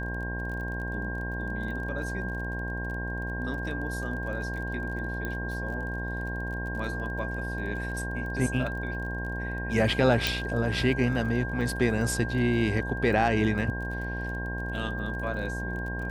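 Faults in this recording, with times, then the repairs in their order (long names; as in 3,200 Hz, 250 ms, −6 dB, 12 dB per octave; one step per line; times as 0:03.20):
mains buzz 60 Hz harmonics 18 −34 dBFS
surface crackle 31 per second −38 dBFS
whistle 1,600 Hz −35 dBFS
0:05.25: click −20 dBFS
0:10.27: click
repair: click removal
notch filter 1,600 Hz, Q 30
hum removal 60 Hz, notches 18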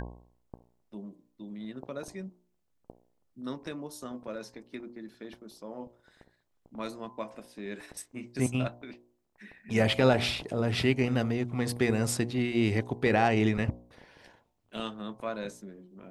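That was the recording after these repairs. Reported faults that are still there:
0:10.27: click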